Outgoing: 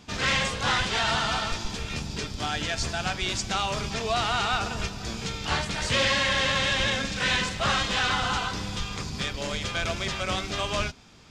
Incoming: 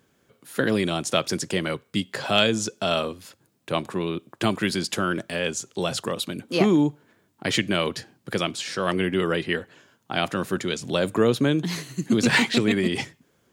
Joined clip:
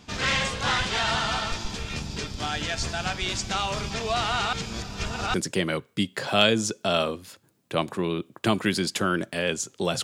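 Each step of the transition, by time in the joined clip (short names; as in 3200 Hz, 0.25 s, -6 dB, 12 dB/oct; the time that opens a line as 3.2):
outgoing
4.53–5.34 reverse
5.34 switch to incoming from 1.31 s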